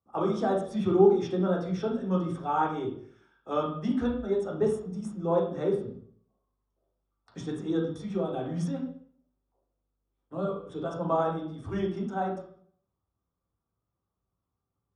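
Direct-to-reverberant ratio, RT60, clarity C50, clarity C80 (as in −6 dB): −3.0 dB, 0.55 s, 5.5 dB, 9.0 dB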